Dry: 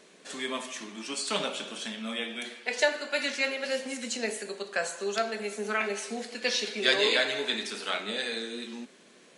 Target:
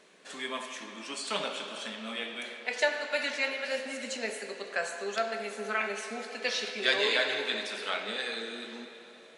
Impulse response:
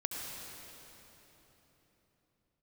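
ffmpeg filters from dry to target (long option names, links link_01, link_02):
-filter_complex "[0:a]asplit=2[link_01][link_02];[link_02]highpass=690,lowpass=4400[link_03];[1:a]atrim=start_sample=2205,lowshelf=frequency=480:gain=10[link_04];[link_03][link_04]afir=irnorm=-1:irlink=0,volume=-4.5dB[link_05];[link_01][link_05]amix=inputs=2:normalize=0,volume=-5dB"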